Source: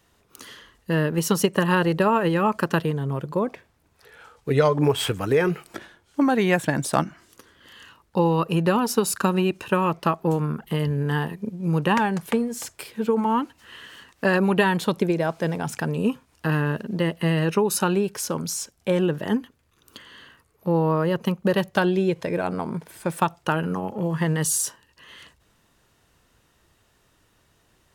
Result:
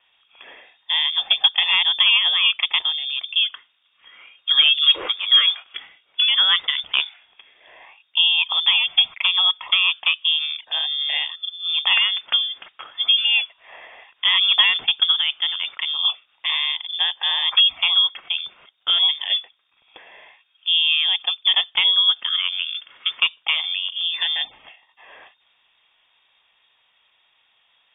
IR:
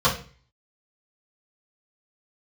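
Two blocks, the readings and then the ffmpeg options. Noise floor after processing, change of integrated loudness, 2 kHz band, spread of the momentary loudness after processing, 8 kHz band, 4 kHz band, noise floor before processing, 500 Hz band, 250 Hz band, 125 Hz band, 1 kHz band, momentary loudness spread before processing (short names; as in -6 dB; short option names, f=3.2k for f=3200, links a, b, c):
-64 dBFS, +6.0 dB, +6.0 dB, 12 LU, under -40 dB, +22.5 dB, -64 dBFS, under -20 dB, under -30 dB, under -35 dB, -8.0 dB, 10 LU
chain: -af "equalizer=f=100:t=o:w=0.67:g=-9,equalizer=f=400:t=o:w=0.67:g=9,equalizer=f=1k:t=o:w=0.67:g=7,equalizer=f=2.5k:t=o:w=0.67:g=6,asoftclip=type=hard:threshold=-5.5dB,lowpass=f=3.1k:t=q:w=0.5098,lowpass=f=3.1k:t=q:w=0.6013,lowpass=f=3.1k:t=q:w=0.9,lowpass=f=3.1k:t=q:w=2.563,afreqshift=-3700,volume=-2dB"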